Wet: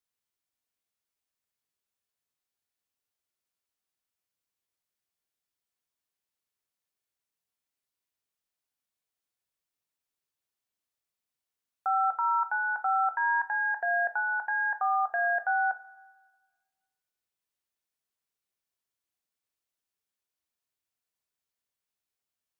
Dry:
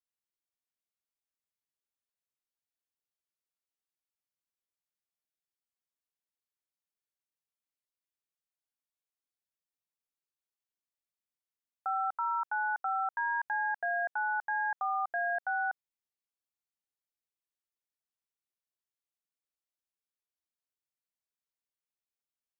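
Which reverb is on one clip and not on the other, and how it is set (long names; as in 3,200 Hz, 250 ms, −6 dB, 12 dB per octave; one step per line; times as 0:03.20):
coupled-rooms reverb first 0.29 s, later 1.5 s, from −17 dB, DRR 8 dB
level +4 dB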